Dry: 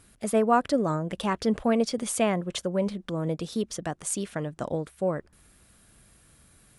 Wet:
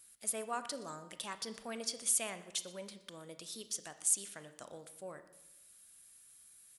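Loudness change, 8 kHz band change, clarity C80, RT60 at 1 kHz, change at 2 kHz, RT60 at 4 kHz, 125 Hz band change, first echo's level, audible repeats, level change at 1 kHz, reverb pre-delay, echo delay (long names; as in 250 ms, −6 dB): −9.5 dB, +0.5 dB, 14.0 dB, 0.85 s, −11.0 dB, 0.75 s, −25.0 dB, −20.0 dB, 1, −16.0 dB, 23 ms, 122 ms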